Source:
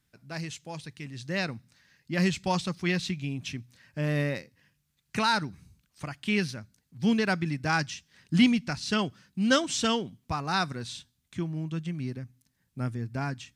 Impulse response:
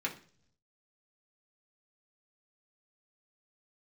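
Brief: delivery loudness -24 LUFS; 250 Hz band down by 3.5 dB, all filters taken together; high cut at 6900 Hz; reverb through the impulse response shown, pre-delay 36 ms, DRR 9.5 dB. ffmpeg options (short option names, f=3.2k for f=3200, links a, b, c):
-filter_complex "[0:a]lowpass=6.9k,equalizer=f=250:t=o:g=-4.5,asplit=2[a][b];[1:a]atrim=start_sample=2205,adelay=36[c];[b][c]afir=irnorm=-1:irlink=0,volume=-14dB[d];[a][d]amix=inputs=2:normalize=0,volume=6.5dB"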